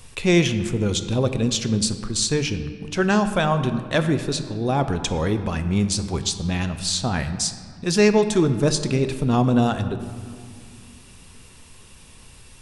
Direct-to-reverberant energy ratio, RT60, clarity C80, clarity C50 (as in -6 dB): 8.5 dB, 2.1 s, 11.0 dB, 10.0 dB